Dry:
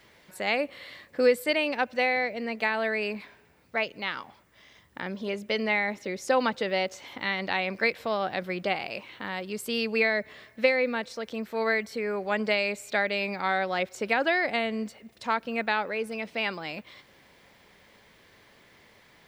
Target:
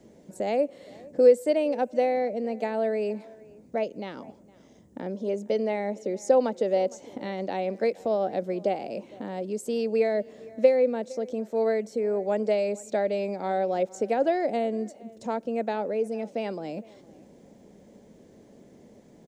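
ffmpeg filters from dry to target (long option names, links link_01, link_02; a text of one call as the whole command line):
ffmpeg -i in.wav -filter_complex "[0:a]firequalizer=gain_entry='entry(100,0);entry(210,12);entry(370,7);entry(600,4);entry(1100,-14);entry(2100,-17);entry(4500,-13);entry(6600,0);entry(13000,-15)':delay=0.05:min_phase=1,acrossover=split=410|3100[link_01][link_02][link_03];[link_01]acompressor=threshold=-42dB:ratio=4[link_04];[link_04][link_02][link_03]amix=inputs=3:normalize=0,asplit=2[link_05][link_06];[link_06]adelay=460.6,volume=-22dB,highshelf=frequency=4000:gain=-10.4[link_07];[link_05][link_07]amix=inputs=2:normalize=0,volume=2.5dB" out.wav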